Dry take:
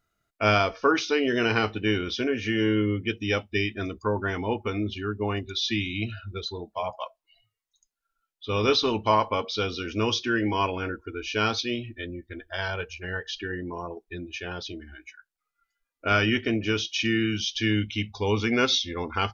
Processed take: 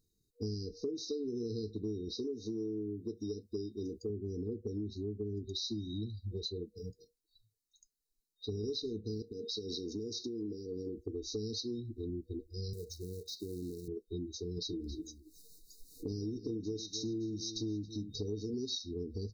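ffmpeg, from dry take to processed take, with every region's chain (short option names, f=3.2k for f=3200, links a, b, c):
-filter_complex "[0:a]asettb=1/sr,asplit=3[a][b][c];[a]atrim=end=2.114[d];[b]atrim=start=2.11:end=4.1,asetpts=PTS-STARTPTS,afade=t=in:d=0.004:c=qsin,afade=t=out:st=1.986:d=0.004:c=qsin,bass=f=250:g=-8,treble=f=4k:g=3,acrossover=split=5000[e][f];[f]acompressor=threshold=-55dB:ratio=4:attack=1:release=60[g];[e][g]amix=inputs=2:normalize=0[h];[c]atrim=start=4.096[i];[d][h]acrossfade=d=0.004:c1=hsin:c2=qsin[j];[j][i]acrossfade=d=0.004:c1=qsin:c2=hsin,asettb=1/sr,asplit=3[k][l][m];[k]atrim=end=9.224[n];[l]atrim=start=9.22:end=10.97,asetpts=PTS-STARTPTS,afade=t=in:d=0.004:c=qsin,afade=t=out:st=1.746:d=0.004:c=qsin,highpass=f=240:p=1,acompressor=threshold=-31dB:ratio=5:attack=3.2:release=140:knee=1:detection=peak[o];[m]atrim=start=10.966[p];[n][o]acrossfade=d=0.004:c1=hsin:c2=qsin[q];[q][p]acrossfade=d=0.004:c1=qsin:c2=hsin,asettb=1/sr,asplit=3[r][s][t];[r]atrim=end=12.734[u];[s]atrim=start=12.73:end=13.88,asetpts=PTS-STARTPTS,afade=t=in:d=0.004:c=qsin,afade=t=out:st=1.146:d=0.004:c=qsin,highpass=f=63:w=0.5412,highpass=f=63:w=1.3066,acrusher=bits=4:mode=log:mix=0:aa=0.000001,acompressor=threshold=-37dB:ratio=3:attack=3.2:release=140:knee=1:detection=peak[v];[t]atrim=start=13.876[w];[u][v]acrossfade=d=0.004:c1=hsin:c2=qsin[x];[x][w]acrossfade=d=0.004:c1=qsin:c2=hsin,asettb=1/sr,asplit=3[y][z][aa];[y]atrim=end=14.574[ab];[z]atrim=start=14.57:end=18.54,asetpts=PTS-STARTPTS,afade=t=in:d=0.004:c=qsin,afade=t=out:st=3.966:d=0.004:c=qsin,aecho=1:1:6.5:0.43,atrim=end_sample=175077,acompressor=mode=upward:threshold=-29dB:ratio=2.5:attack=3.2:release=140:knee=2.83:detection=peak,aecho=1:1:273:0.158,atrim=end_sample=175077[ac];[aa]atrim=start=18.536[ad];[ab][ac]acrossfade=d=0.004:c1=hsin:c2=qsin[ae];[ae][ad]acrossfade=d=0.004:c1=qsin:c2=hsin,afftfilt=real='re*(1-between(b*sr/4096,480,3700))':imag='im*(1-between(b*sr/4096,480,3700))':win_size=4096:overlap=0.75,acompressor=threshold=-37dB:ratio=6,volume=1dB"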